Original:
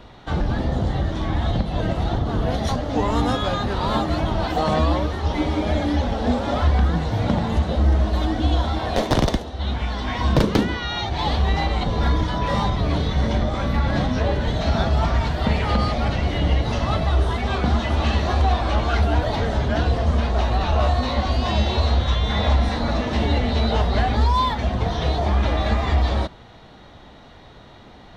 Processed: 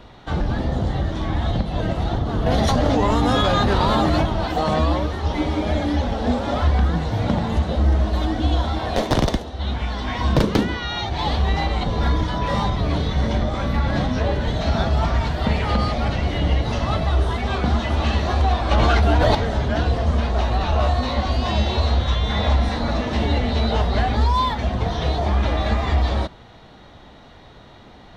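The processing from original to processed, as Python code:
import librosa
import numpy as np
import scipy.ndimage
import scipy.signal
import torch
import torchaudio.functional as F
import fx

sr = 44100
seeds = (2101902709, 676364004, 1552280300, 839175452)

y = fx.env_flatten(x, sr, amount_pct=100, at=(2.46, 4.26))
y = fx.env_flatten(y, sr, amount_pct=100, at=(18.71, 19.35))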